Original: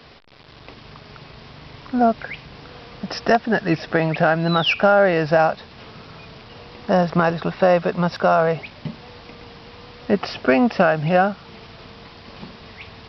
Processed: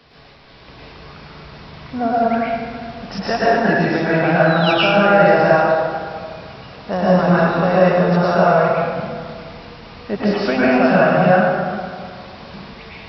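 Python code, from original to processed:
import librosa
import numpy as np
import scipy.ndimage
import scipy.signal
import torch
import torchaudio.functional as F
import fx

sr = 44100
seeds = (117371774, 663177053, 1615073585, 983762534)

y = fx.rev_plate(x, sr, seeds[0], rt60_s=2.0, hf_ratio=0.55, predelay_ms=95, drr_db=-8.5)
y = F.gain(torch.from_numpy(y), -5.0).numpy()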